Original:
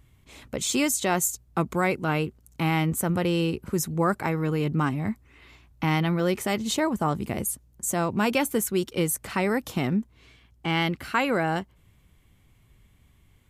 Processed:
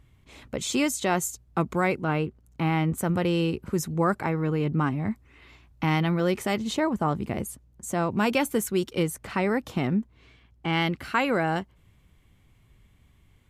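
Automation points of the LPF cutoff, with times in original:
LPF 6 dB/oct
4900 Hz
from 2.01 s 2100 Hz
from 2.98 s 5400 Hz
from 4.24 s 2500 Hz
from 5.11 s 6600 Hz
from 6.64 s 3100 Hz
from 8.11 s 7700 Hz
from 9.03 s 3200 Hz
from 10.73 s 7100 Hz

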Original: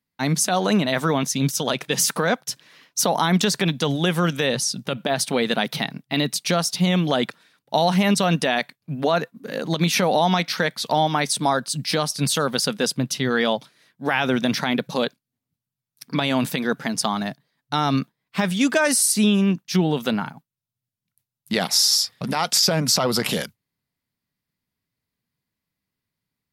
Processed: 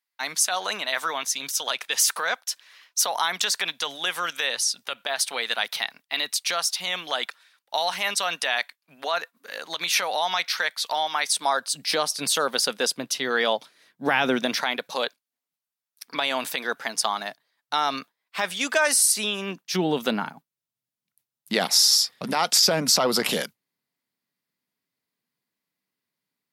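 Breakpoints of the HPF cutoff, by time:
11.25 s 1000 Hz
11.89 s 450 Hz
13.52 s 450 Hz
14.13 s 160 Hz
14.69 s 620 Hz
19.35 s 620 Hz
19.9 s 250 Hz

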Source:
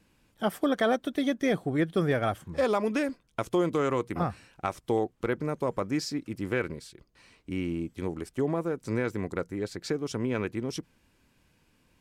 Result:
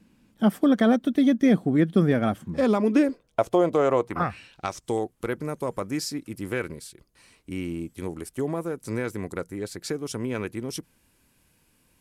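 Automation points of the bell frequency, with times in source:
bell +13 dB 0.96 oct
2.71 s 220 Hz
3.4 s 650 Hz
4.03 s 650 Hz
4.29 s 2200 Hz
5.05 s 11000 Hz

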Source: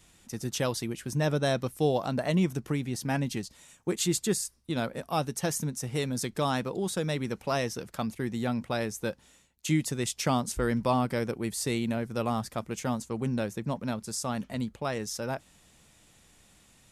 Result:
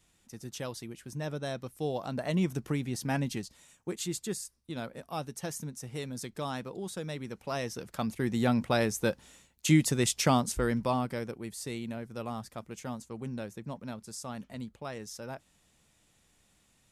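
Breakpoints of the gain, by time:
1.67 s -9 dB
2.57 s -1.5 dB
3.25 s -1.5 dB
4.06 s -7.5 dB
7.34 s -7.5 dB
8.44 s +3.5 dB
10.13 s +3.5 dB
11.45 s -8 dB

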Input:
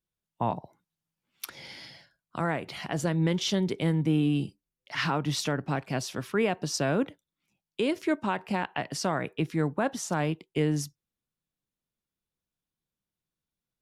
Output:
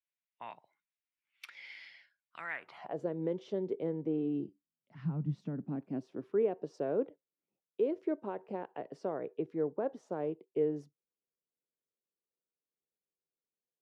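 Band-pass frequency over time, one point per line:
band-pass, Q 2.9
2.5 s 2200 Hz
2.98 s 450 Hz
4.25 s 450 Hz
5.06 s 150 Hz
6.59 s 450 Hz

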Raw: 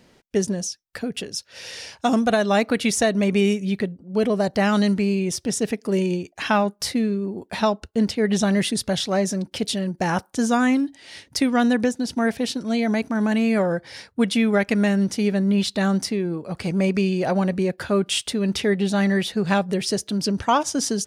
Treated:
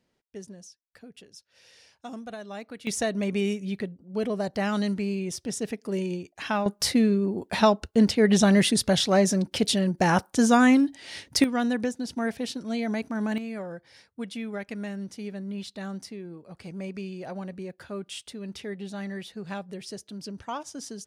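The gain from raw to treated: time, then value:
-19.5 dB
from 2.87 s -7.5 dB
from 6.66 s +1 dB
from 11.44 s -7 dB
from 13.38 s -15 dB

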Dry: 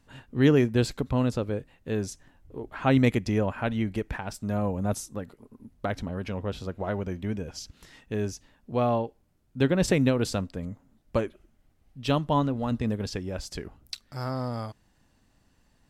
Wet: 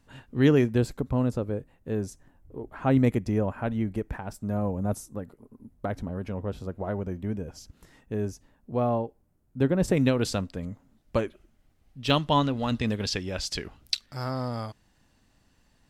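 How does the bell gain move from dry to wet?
bell 3600 Hz 2.3 oct
-1 dB
from 0.78 s -10 dB
from 9.97 s +2 dB
from 12.1 s +10.5 dB
from 14.06 s +2.5 dB

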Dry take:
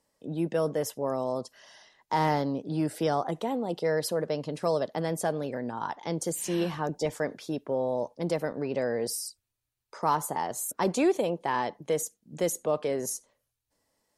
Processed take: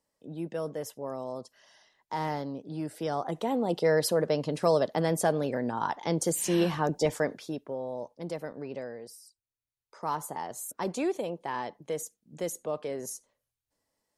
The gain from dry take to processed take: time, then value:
2.97 s -6.5 dB
3.63 s +3 dB
7.16 s +3 dB
7.78 s -7 dB
8.73 s -7 dB
9.2 s -18 dB
10.14 s -5.5 dB

